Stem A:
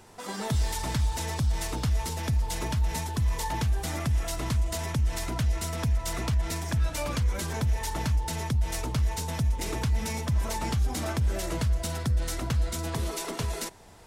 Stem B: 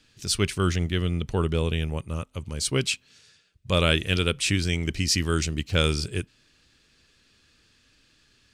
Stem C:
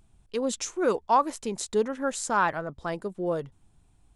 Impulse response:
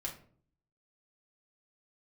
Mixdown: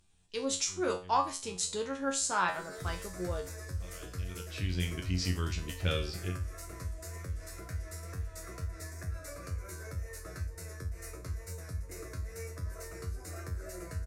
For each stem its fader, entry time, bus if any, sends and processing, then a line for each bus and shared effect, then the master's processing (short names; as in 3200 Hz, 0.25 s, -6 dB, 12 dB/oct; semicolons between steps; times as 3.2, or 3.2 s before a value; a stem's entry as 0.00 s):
-0.5 dB, 2.30 s, no send, bell 300 Hz +6 dB 0.52 oct; fixed phaser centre 870 Hz, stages 6; vibrato 2.1 Hz 40 cents
-1.0 dB, 0.10 s, no send, LPF 5000 Hz 12 dB/oct; auto duck -21 dB, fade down 0.40 s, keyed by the third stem
-0.5 dB, 0.00 s, no send, bell 5200 Hz +12 dB 2.9 oct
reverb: off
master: resonator 91 Hz, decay 0.32 s, harmonics all, mix 90%